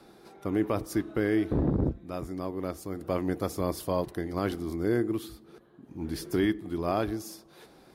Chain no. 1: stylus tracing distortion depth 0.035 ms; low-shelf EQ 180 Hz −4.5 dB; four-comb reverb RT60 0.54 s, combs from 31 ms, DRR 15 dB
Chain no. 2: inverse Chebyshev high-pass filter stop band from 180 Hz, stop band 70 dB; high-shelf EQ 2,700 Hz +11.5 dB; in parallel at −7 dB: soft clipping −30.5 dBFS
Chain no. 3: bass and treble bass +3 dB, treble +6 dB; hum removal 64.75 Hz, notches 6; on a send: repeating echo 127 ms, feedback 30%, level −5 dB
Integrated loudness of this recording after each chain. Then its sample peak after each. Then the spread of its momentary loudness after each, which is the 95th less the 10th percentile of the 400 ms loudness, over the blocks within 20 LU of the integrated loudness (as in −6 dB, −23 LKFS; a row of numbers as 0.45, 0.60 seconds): −31.5, −33.5, −29.0 LKFS; −15.0, −17.0, −13.0 dBFS; 10, 14, 11 LU